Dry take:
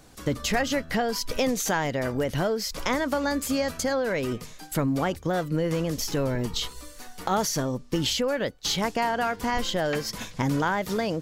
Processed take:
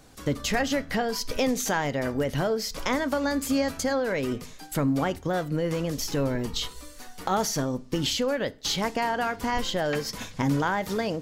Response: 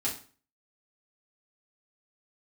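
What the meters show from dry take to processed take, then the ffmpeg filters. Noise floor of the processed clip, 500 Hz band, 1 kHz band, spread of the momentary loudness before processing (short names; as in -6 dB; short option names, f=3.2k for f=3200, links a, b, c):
-46 dBFS, -0.5 dB, -0.5 dB, 5 LU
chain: -filter_complex "[0:a]asplit=2[a][b];[1:a]atrim=start_sample=2205,lowpass=8k[c];[b][c]afir=irnorm=-1:irlink=0,volume=-18dB[d];[a][d]amix=inputs=2:normalize=0,volume=-1.5dB"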